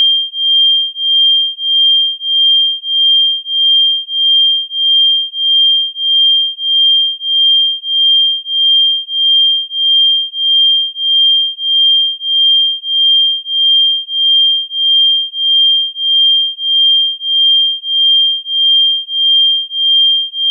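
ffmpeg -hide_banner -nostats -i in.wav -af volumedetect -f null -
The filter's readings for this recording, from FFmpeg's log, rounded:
mean_volume: -11.5 dB
max_volume: -5.4 dB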